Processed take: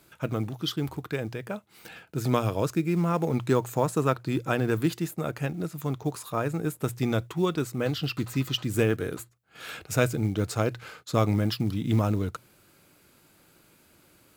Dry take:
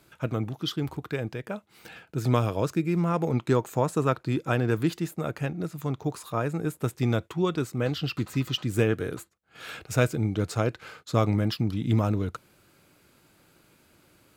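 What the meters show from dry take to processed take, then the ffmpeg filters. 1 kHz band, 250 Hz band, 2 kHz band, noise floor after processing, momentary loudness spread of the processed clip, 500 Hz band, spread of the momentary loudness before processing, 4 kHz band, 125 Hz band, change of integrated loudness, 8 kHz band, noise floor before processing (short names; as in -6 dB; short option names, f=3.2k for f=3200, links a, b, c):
0.0 dB, 0.0 dB, 0.0 dB, -61 dBFS, 11 LU, 0.0 dB, 10 LU, +0.5 dB, -1.0 dB, -0.5 dB, +2.5 dB, -62 dBFS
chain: -af "crystalizer=i=0.5:c=0,bandreject=f=60:t=h:w=6,bandreject=f=120:t=h:w=6,acrusher=bits=8:mode=log:mix=0:aa=0.000001"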